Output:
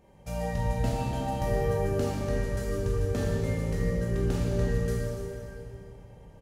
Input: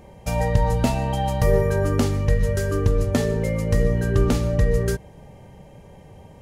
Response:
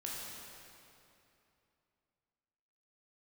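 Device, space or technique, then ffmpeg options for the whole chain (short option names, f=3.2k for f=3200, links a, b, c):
cave: -filter_complex "[0:a]aecho=1:1:289:0.266[a];[1:a]atrim=start_sample=2205[b];[a][b]afir=irnorm=-1:irlink=0,volume=-9dB"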